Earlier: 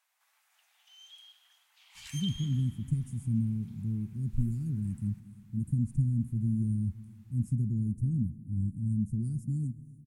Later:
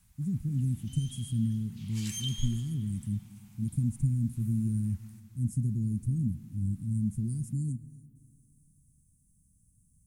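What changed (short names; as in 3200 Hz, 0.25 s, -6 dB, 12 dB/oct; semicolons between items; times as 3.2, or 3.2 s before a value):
speech: entry -1.95 s; master: add tone controls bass 0 dB, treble +9 dB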